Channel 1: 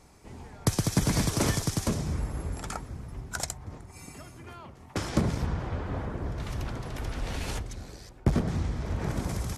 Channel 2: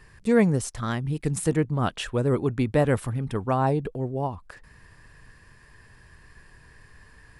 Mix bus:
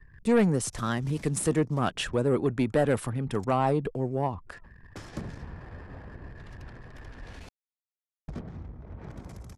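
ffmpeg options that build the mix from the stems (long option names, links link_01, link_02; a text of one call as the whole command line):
ffmpeg -i stem1.wav -i stem2.wav -filter_complex "[0:a]volume=-11.5dB,asplit=3[link_01][link_02][link_03];[link_01]atrim=end=7.49,asetpts=PTS-STARTPTS,afade=type=out:start_time=7.486:duration=0.004:curve=hsin[link_04];[link_02]atrim=start=7.49:end=8.28,asetpts=PTS-STARTPTS,volume=0[link_05];[link_03]atrim=start=8.28,asetpts=PTS-STARTPTS,afade=type=in:duration=0.004:curve=hsin[link_06];[link_04][link_05][link_06]concat=n=3:v=0:a=1[link_07];[1:a]acrossover=split=160[link_08][link_09];[link_08]acompressor=threshold=-36dB:ratio=6[link_10];[link_10][link_09]amix=inputs=2:normalize=0,volume=1dB,asplit=2[link_11][link_12];[link_12]apad=whole_len=422142[link_13];[link_07][link_13]sidechaincompress=threshold=-34dB:ratio=16:attack=6.4:release=226[link_14];[link_14][link_11]amix=inputs=2:normalize=0,anlmdn=0.00631,asoftclip=type=tanh:threshold=-15.5dB" out.wav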